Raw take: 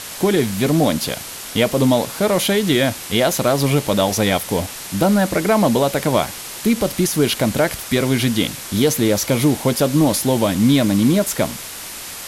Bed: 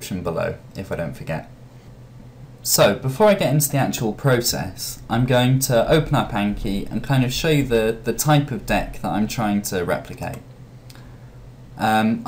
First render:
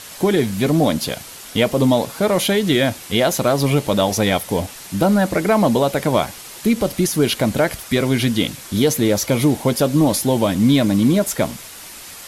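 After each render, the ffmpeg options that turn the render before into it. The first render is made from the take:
ffmpeg -i in.wav -af "afftdn=noise_reduction=6:noise_floor=-32" out.wav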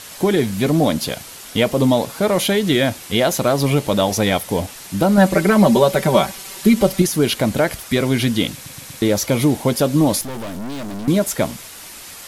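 ffmpeg -i in.wav -filter_complex "[0:a]asettb=1/sr,asplit=3[link_01][link_02][link_03];[link_01]atrim=end=5.174[link_04];[link_02]atrim=start=5.17:end=7.02,asetpts=PTS-STARTPTS,afade=type=in:duration=0.004:curve=qsin,afade=type=out:start_time=1.846:duration=0.004:curve=qsin,aecho=1:1:5.2:0.91,atrim=end_sample=81585[link_05];[link_03]atrim=start=7.016[link_06];[link_04][link_05]acrossfade=duration=0.004:curve1=hsin:curve2=qsin[link_07];[link_07][link_06]acrossfade=duration=0.004:curve1=qsin:curve2=hsin,asettb=1/sr,asplit=3[link_08][link_09][link_10];[link_08]atrim=end=10.214[link_11];[link_09]atrim=start=10.21:end=11.08,asetpts=PTS-STARTPTS,afade=type=in:duration=0.004:curve=qsin,afade=type=out:start_time=0.866:duration=0.004:curve=qsin,aeval=exprs='(tanh(22.4*val(0)+0.7)-tanh(0.7))/22.4':channel_layout=same[link_12];[link_10]atrim=start=11.076[link_13];[link_11][link_12]acrossfade=duration=0.004:curve1=hsin:curve2=qsin[link_14];[link_14][link_13]acrossfade=duration=0.004:curve1=qsin:curve2=hsin,asplit=5[link_15][link_16][link_17][link_18][link_19];[link_15]atrim=end=8.662[link_20];[link_16]atrim=start=8.538:end=8.662[link_21];[link_17]atrim=start=8.538:end=8.662[link_22];[link_18]atrim=start=8.538:end=8.662[link_23];[link_19]atrim=start=9.018[link_24];[link_20][link_21]acrossfade=duration=0.004:curve1=hsin:curve2=hsin[link_25];[link_25][link_22]acrossfade=duration=0.004:curve1=hsin:curve2=hsin[link_26];[link_26][link_23]acrossfade=duration=0.004:curve1=hsin:curve2=hsin[link_27];[link_27][link_24]acrossfade=duration=0.004:curve1=hsin:curve2=hsin" out.wav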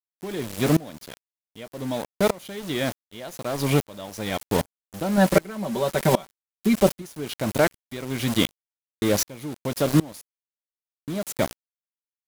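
ffmpeg -i in.wav -af "aeval=exprs='val(0)*gte(abs(val(0)),0.0944)':channel_layout=same,aeval=exprs='val(0)*pow(10,-26*if(lt(mod(-1.3*n/s,1),2*abs(-1.3)/1000),1-mod(-1.3*n/s,1)/(2*abs(-1.3)/1000),(mod(-1.3*n/s,1)-2*abs(-1.3)/1000)/(1-2*abs(-1.3)/1000))/20)':channel_layout=same" out.wav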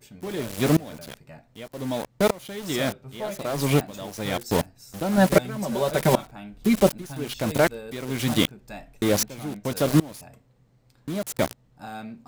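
ffmpeg -i in.wav -i bed.wav -filter_complex "[1:a]volume=-19.5dB[link_01];[0:a][link_01]amix=inputs=2:normalize=0" out.wav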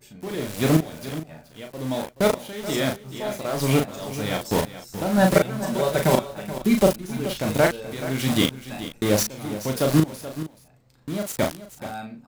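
ffmpeg -i in.wav -filter_complex "[0:a]asplit=2[link_01][link_02];[link_02]adelay=38,volume=-4.5dB[link_03];[link_01][link_03]amix=inputs=2:normalize=0,aecho=1:1:428:0.211" out.wav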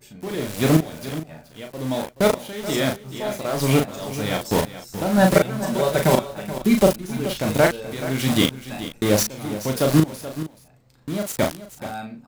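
ffmpeg -i in.wav -af "volume=2dB,alimiter=limit=-2dB:level=0:latency=1" out.wav

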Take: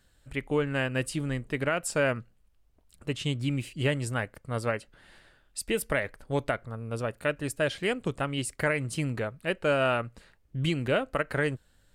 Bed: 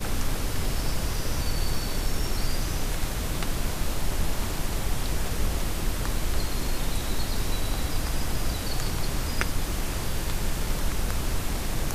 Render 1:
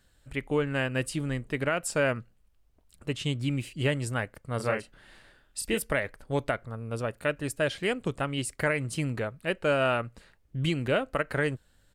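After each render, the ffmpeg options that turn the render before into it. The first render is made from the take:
ffmpeg -i in.wav -filter_complex "[0:a]asplit=3[link_01][link_02][link_03];[link_01]afade=type=out:start_time=4.59:duration=0.02[link_04];[link_02]asplit=2[link_05][link_06];[link_06]adelay=32,volume=-4dB[link_07];[link_05][link_07]amix=inputs=2:normalize=0,afade=type=in:start_time=4.59:duration=0.02,afade=type=out:start_time=5.77:duration=0.02[link_08];[link_03]afade=type=in:start_time=5.77:duration=0.02[link_09];[link_04][link_08][link_09]amix=inputs=3:normalize=0" out.wav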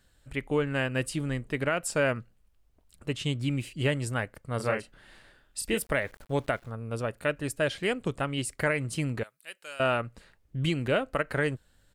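ffmpeg -i in.wav -filter_complex "[0:a]asettb=1/sr,asplit=3[link_01][link_02][link_03];[link_01]atrim=end=5.814[link_04];[link_02]atrim=start=5.81:end=6.7,asetpts=PTS-STARTPTS,afade=type=in:duration=0.004:curve=qsin,afade=type=out:start_time=0.886:duration=0.004:curve=qsin,aeval=exprs='val(0)*gte(abs(val(0)),0.00251)':channel_layout=same[link_05];[link_03]atrim=start=6.696[link_06];[link_04][link_05]acrossfade=duration=0.004:curve1=hsin:curve2=qsin[link_07];[link_07][link_06]acrossfade=duration=0.004:curve1=qsin:curve2=hsin,asettb=1/sr,asplit=3[link_08][link_09][link_10];[link_08]atrim=end=9.234[link_11];[link_09]atrim=start=9.23:end=9.8,asetpts=PTS-STARTPTS,afade=type=in:duration=0.004:curve=qsin,afade=type=out:start_time=0.566:duration=0.004:curve=qsin,aderivative[link_12];[link_10]atrim=start=9.796[link_13];[link_11][link_12]acrossfade=duration=0.004:curve1=hsin:curve2=qsin[link_14];[link_14][link_13]acrossfade=duration=0.004:curve1=qsin:curve2=hsin" out.wav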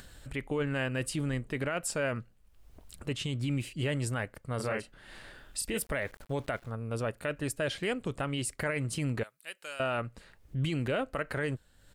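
ffmpeg -i in.wav -af "acompressor=mode=upward:threshold=-39dB:ratio=2.5,alimiter=limit=-22.5dB:level=0:latency=1:release=14" out.wav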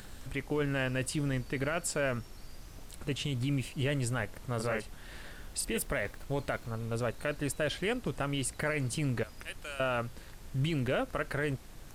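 ffmpeg -i in.wav -i bed.wav -filter_complex "[1:a]volume=-22dB[link_01];[0:a][link_01]amix=inputs=2:normalize=0" out.wav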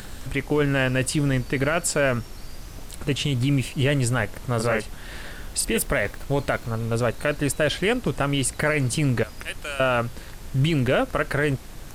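ffmpeg -i in.wav -af "volume=10dB" out.wav

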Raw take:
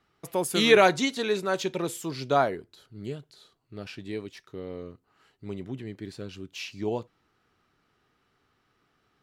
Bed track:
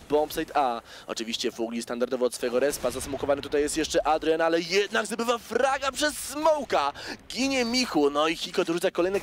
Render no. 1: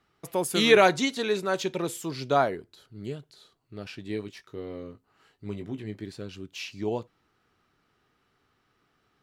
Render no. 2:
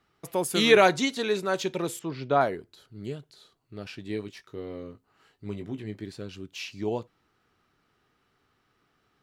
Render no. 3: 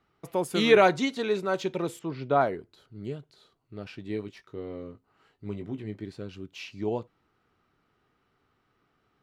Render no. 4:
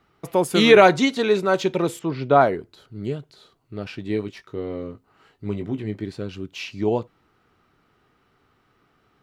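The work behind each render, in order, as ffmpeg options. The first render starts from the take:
ffmpeg -i in.wav -filter_complex "[0:a]asettb=1/sr,asplit=3[link_01][link_02][link_03];[link_01]atrim=end=4.084[link_04];[link_02]atrim=start=4.08:end=6.04,asetpts=PTS-STARTPTS,afade=type=in:duration=0.004:curve=qsin,afade=type=out:start_time=1.956:duration=0.004:curve=qsin,asplit=2[link_05][link_06];[link_06]adelay=19,volume=-7.5dB[link_07];[link_05][link_07]amix=inputs=2:normalize=0,atrim=end_sample=86436[link_08];[link_03]atrim=start=6.036[link_09];[link_04][link_08]acrossfade=duration=0.004:curve1=hsin:curve2=qsin[link_10];[link_10][link_09]acrossfade=duration=0.004:curve1=qsin:curve2=hsin" out.wav
ffmpeg -i in.wav -filter_complex "[0:a]asettb=1/sr,asplit=3[link_01][link_02][link_03];[link_01]atrim=end=1.994[link_04];[link_02]atrim=start=1.99:end=2.41,asetpts=PTS-STARTPTS,afade=type=in:duration=0.004:curve=qsin,afade=type=out:start_time=0.416:duration=0.004:curve=qsin,lowpass=2800[link_05];[link_03]atrim=start=2.406[link_06];[link_04][link_05]acrossfade=duration=0.004:curve1=hsin:curve2=qsin[link_07];[link_07][link_06]acrossfade=duration=0.004:curve1=qsin:curve2=hsin" out.wav
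ffmpeg -i in.wav -af "highshelf=frequency=3800:gain=-10,bandreject=frequency=1700:width=22" out.wav
ffmpeg -i in.wav -af "volume=8dB,alimiter=limit=-3dB:level=0:latency=1" out.wav

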